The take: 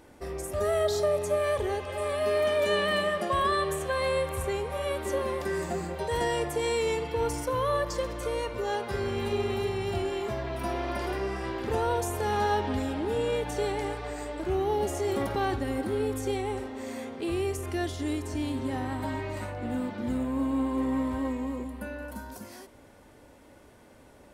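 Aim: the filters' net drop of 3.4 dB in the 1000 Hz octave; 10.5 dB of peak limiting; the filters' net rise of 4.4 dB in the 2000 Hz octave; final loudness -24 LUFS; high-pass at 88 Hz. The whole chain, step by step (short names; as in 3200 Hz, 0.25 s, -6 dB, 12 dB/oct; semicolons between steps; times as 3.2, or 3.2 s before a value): HPF 88 Hz; bell 1000 Hz -6 dB; bell 2000 Hz +7 dB; gain +9.5 dB; limiter -15.5 dBFS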